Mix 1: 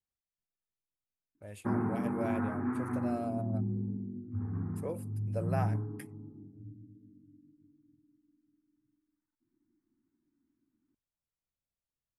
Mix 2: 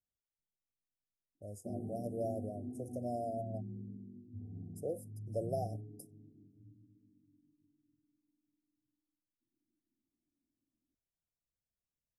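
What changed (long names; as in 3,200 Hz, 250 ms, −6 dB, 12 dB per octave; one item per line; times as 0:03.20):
background −11.0 dB
master: add linear-phase brick-wall band-stop 770–4,900 Hz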